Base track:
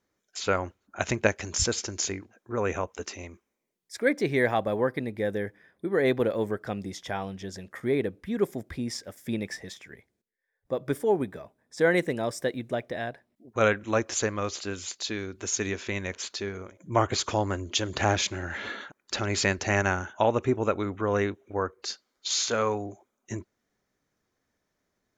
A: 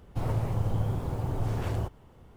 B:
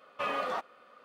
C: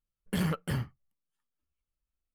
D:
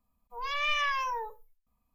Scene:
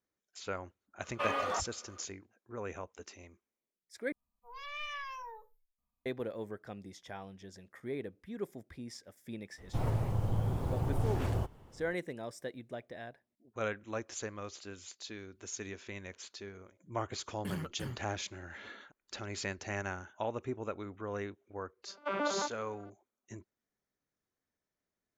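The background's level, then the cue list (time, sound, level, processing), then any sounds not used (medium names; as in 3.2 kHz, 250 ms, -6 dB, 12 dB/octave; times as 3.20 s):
base track -13 dB
1.00 s: add B -1 dB
4.12 s: replace with D -12.5 dB
9.58 s: add A -2.5 dB + gain riding
17.12 s: add C -10 dB
21.86 s: add B -0.5 dB + vocoder on a broken chord bare fifth, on G3, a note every 110 ms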